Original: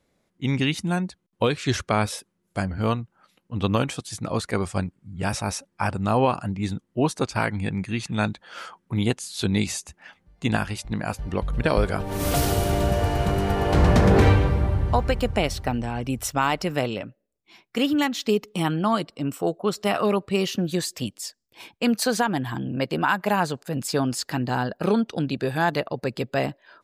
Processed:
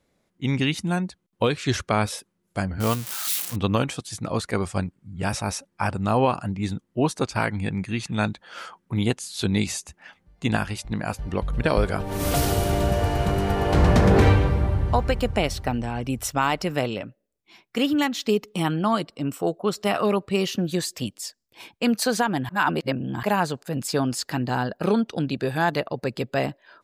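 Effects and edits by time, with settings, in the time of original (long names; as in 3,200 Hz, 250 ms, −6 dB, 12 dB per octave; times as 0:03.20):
0:02.80–0:03.56: spike at every zero crossing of −17.5 dBFS
0:22.49–0:23.23: reverse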